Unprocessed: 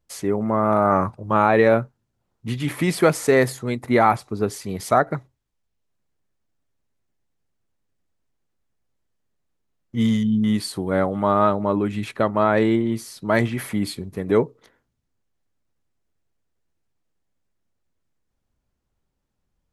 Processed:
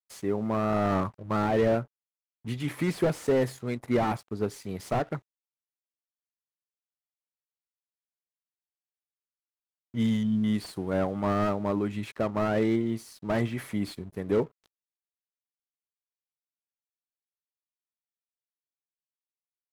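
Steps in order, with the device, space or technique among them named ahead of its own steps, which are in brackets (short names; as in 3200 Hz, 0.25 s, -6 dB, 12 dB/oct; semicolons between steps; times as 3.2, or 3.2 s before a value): early transistor amplifier (crossover distortion -47 dBFS; slew limiter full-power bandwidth 94 Hz); gain -6 dB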